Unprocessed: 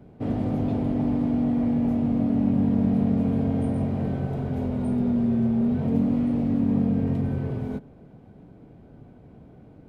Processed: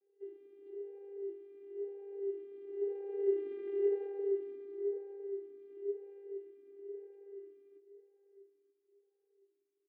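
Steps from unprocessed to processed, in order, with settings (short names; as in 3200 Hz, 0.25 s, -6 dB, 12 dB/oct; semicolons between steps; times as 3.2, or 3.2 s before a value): Doppler pass-by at 3.71, 13 m/s, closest 3 m; soft clip -28.5 dBFS, distortion -10 dB; vocoder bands 16, saw 399 Hz; on a send: echo 0.93 s -13.5 dB; on the sum: vowel sweep e-i 0.98 Hz; gain +6 dB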